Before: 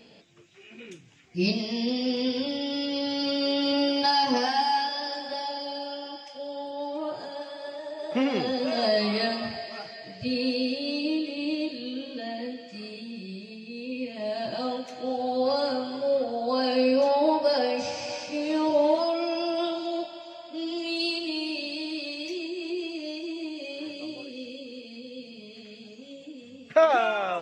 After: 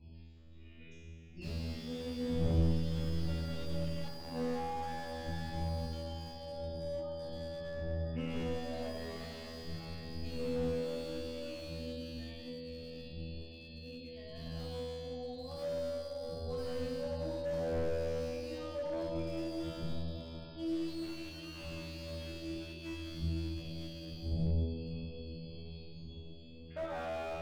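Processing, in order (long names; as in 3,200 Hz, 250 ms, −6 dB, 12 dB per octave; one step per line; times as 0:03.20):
wind on the microphone 120 Hz −27 dBFS
low-shelf EQ 140 Hz −6 dB
mains-hum notches 50/100/150/200/250/300/350/400/450/500 Hz
feedback delay with all-pass diffusion 578 ms, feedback 62%, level −11 dB
gate on every frequency bin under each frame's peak −30 dB strong
parametric band 930 Hz −6.5 dB 1.6 octaves
tuned comb filter 82 Hz, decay 1.7 s, harmonics all, mix 100%
slew-rate limiting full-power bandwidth 4.7 Hz
level +7.5 dB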